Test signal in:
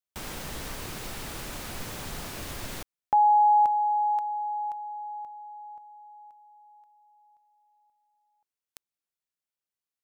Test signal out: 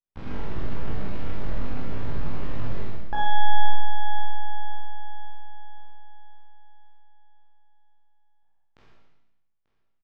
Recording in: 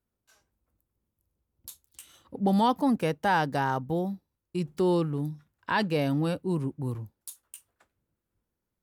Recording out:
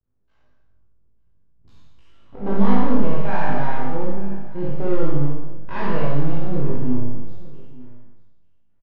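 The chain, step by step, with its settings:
peak hold with a decay on every bin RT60 0.86 s
high-pass filter 57 Hz 6 dB per octave
RIAA equalisation playback
mains-hum notches 50/100/150/200 Hz
half-wave rectification
high-frequency loss of the air 200 metres
double-tracking delay 20 ms −3 dB
single-tap delay 890 ms −20 dB
four-comb reverb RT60 0.87 s, combs from 28 ms, DRR −3 dB
level −4.5 dB

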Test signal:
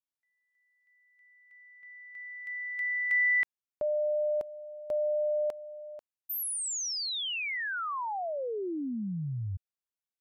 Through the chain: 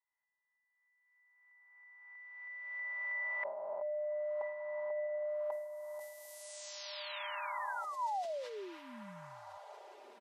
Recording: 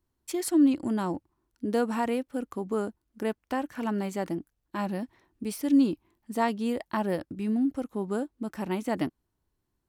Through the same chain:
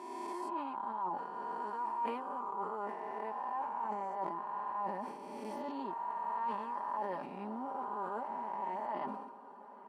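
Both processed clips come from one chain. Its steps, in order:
peak hold with a rise ahead of every peak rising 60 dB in 1.71 s
resonant band-pass 940 Hz, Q 9.4
comb filter 5 ms, depth 75%
reversed playback
downward compressor 6 to 1, threshold −46 dBFS
reversed playback
feedback delay with all-pass diffusion 1,502 ms, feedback 47%, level −14.5 dB
level that may fall only so fast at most 52 dB per second
level +10 dB

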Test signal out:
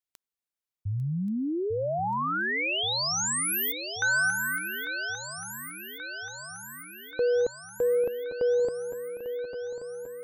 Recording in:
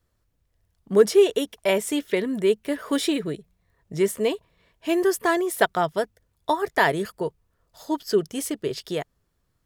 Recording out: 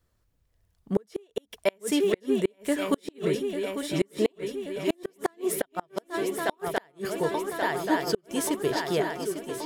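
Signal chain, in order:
feedback echo with a long and a short gap by turns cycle 1,130 ms, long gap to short 3 to 1, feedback 63%, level −10 dB
gate with flip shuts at −12 dBFS, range −38 dB

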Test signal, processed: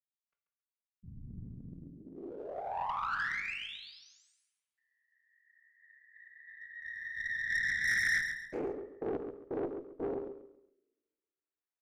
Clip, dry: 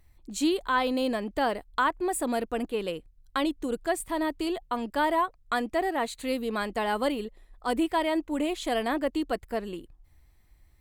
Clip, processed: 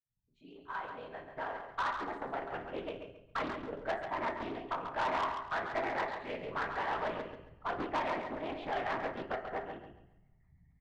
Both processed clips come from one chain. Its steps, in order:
fade in at the beginning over 2.82 s
gate on every frequency bin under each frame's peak −30 dB strong
parametric band 240 Hz −14.5 dB 1 octave
random phases in short frames
transistor ladder low-pass 2,600 Hz, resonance 20%
mains-hum notches 50/100/150/200/250 Hz
in parallel at −11.5 dB: slack as between gear wheels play −38 dBFS
on the sum: parametric band 510 Hz −9 dB 0.28 octaves
coupled-rooms reverb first 0.45 s, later 1.6 s, from −25 dB, DRR 4 dB
tube saturation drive 28 dB, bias 0.25
repeating echo 137 ms, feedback 30%, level −7 dB
highs frequency-modulated by the lows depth 0.5 ms

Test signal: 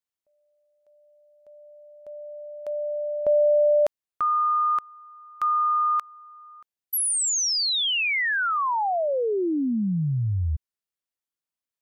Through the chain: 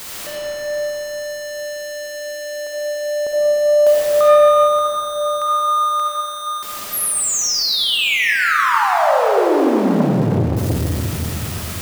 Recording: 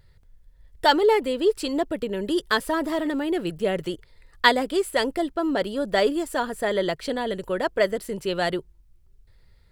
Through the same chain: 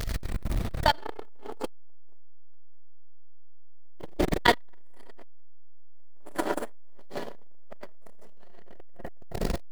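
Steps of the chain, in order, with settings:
converter with a step at zero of −23 dBFS
comb and all-pass reverb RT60 4.2 s, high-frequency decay 0.3×, pre-delay 25 ms, DRR −5.5 dB
saturating transformer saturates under 470 Hz
level −1 dB

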